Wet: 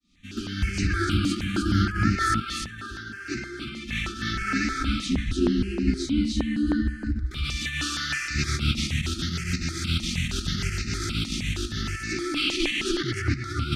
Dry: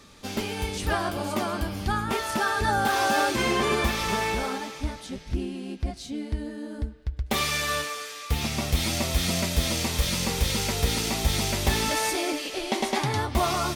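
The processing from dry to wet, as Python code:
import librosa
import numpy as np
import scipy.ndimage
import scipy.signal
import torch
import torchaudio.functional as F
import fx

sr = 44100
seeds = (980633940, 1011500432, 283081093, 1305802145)

y = fx.fade_in_head(x, sr, length_s=1.37)
y = fx.over_compress(y, sr, threshold_db=-31.0, ratio=-0.5)
y = fx.brickwall_bandstop(y, sr, low_hz=390.0, high_hz=1200.0)
y = fx.air_absorb(y, sr, metres=90.0)
y = y + 10.0 ** (-3.0 / 20.0) * np.pad(y, (int(301 * sr / 1000.0), 0))[:len(y)]
y = fx.phaser_held(y, sr, hz=6.4, low_hz=420.0, high_hz=3300.0)
y = y * librosa.db_to_amplitude(8.5)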